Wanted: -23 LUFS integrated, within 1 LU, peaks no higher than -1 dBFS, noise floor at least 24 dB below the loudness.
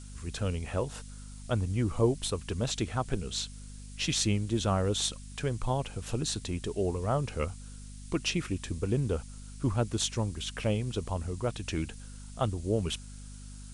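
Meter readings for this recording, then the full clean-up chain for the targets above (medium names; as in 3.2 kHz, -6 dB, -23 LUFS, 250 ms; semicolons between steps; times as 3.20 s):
hum 50 Hz; highest harmonic 250 Hz; hum level -44 dBFS; noise floor -46 dBFS; noise floor target -56 dBFS; loudness -32.0 LUFS; peak level -12.5 dBFS; loudness target -23.0 LUFS
-> de-hum 50 Hz, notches 5; noise reduction 10 dB, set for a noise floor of -46 dBFS; trim +9 dB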